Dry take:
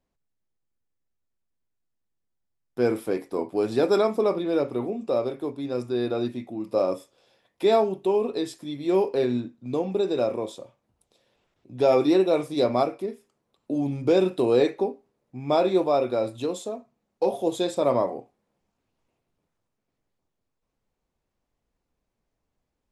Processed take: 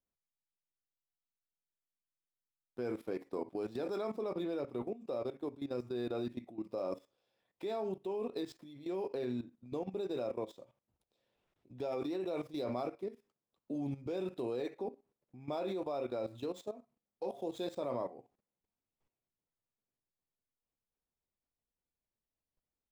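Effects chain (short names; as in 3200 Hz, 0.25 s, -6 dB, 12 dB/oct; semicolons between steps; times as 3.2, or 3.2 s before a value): median filter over 5 samples; level quantiser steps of 15 dB; gain -6.5 dB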